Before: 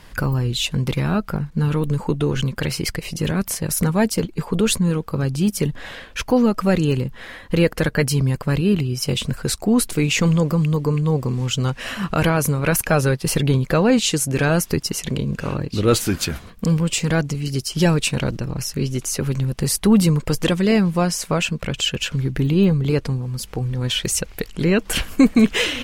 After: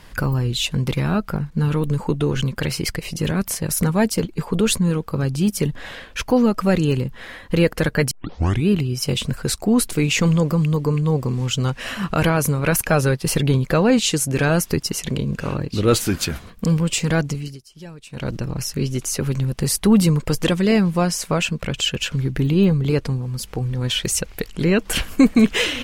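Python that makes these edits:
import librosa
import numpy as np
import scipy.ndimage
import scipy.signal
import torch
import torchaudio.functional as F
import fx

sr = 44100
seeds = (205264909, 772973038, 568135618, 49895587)

y = fx.edit(x, sr, fx.tape_start(start_s=8.11, length_s=0.57),
    fx.fade_down_up(start_s=17.32, length_s=1.04, db=-21.5, fade_s=0.27), tone=tone)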